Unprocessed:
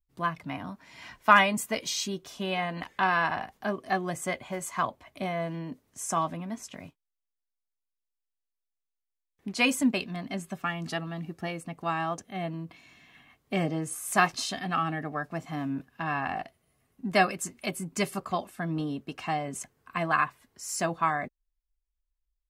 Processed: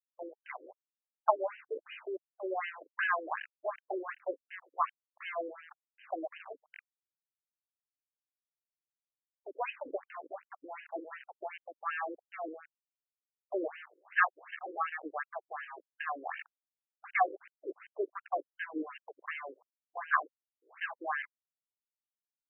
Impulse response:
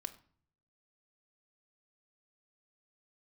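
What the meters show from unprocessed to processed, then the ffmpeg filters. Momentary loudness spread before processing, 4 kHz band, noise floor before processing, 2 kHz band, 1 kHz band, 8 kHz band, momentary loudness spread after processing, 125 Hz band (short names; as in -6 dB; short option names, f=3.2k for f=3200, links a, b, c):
13 LU, -19.0 dB, -85 dBFS, -6.0 dB, -7.0 dB, under -40 dB, 16 LU, under -40 dB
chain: -af "aeval=exprs='val(0)*gte(abs(val(0)),0.0224)':c=same,aresample=11025,aresample=44100,afftfilt=real='re*between(b*sr/1024,370*pow(2200/370,0.5+0.5*sin(2*PI*2.7*pts/sr))/1.41,370*pow(2200/370,0.5+0.5*sin(2*PI*2.7*pts/sr))*1.41)':imag='im*between(b*sr/1024,370*pow(2200/370,0.5+0.5*sin(2*PI*2.7*pts/sr))/1.41,370*pow(2200/370,0.5+0.5*sin(2*PI*2.7*pts/sr))*1.41)':win_size=1024:overlap=0.75"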